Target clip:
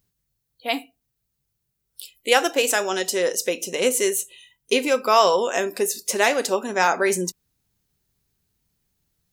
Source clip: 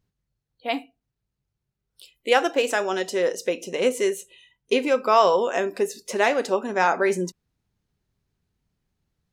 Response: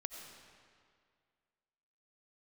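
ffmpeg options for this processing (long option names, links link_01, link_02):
-af "aemphasis=mode=production:type=75kf"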